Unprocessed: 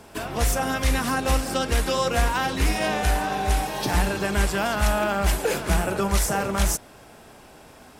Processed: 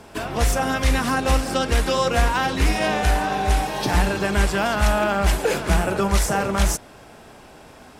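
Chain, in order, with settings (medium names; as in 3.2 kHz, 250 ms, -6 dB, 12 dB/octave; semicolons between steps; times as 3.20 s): treble shelf 9.9 kHz -8.5 dB; trim +3 dB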